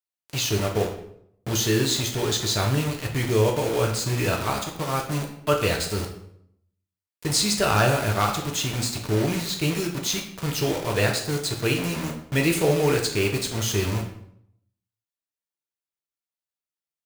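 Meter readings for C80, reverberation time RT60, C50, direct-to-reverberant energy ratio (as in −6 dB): 10.5 dB, 0.70 s, 7.5 dB, 1.0 dB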